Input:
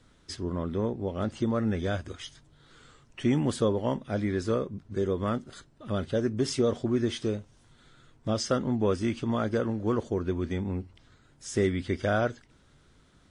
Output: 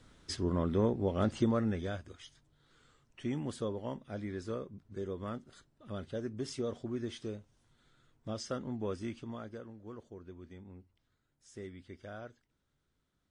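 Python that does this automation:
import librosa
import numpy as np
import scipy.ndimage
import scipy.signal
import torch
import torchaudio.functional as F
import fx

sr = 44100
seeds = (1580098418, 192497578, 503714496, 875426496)

y = fx.gain(x, sr, db=fx.line((1.38, 0.0), (2.07, -11.0), (9.08, -11.0), (9.69, -20.0)))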